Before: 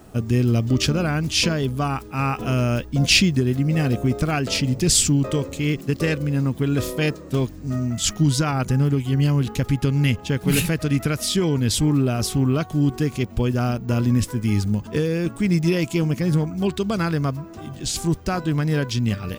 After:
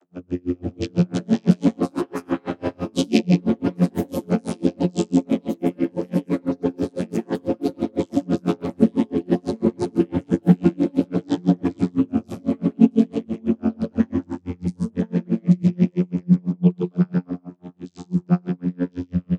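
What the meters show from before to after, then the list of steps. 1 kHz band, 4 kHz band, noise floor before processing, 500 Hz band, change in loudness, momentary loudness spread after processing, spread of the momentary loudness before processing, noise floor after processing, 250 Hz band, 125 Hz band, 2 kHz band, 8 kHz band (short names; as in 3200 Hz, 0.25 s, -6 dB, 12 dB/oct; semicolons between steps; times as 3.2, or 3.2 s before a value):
-5.0 dB, -14.5 dB, -39 dBFS, 0.0 dB, -1.0 dB, 9 LU, 5 LU, -55 dBFS, +2.5 dB, -4.5 dB, -12.0 dB, under -15 dB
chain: bell 130 Hz +9 dB 1.4 oct; non-linear reverb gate 0.19 s rising, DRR 5 dB; vocoder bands 32, saw 88.8 Hz; echoes that change speed 0.498 s, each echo +4 st, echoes 3; dB-linear tremolo 6 Hz, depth 36 dB; gain -1.5 dB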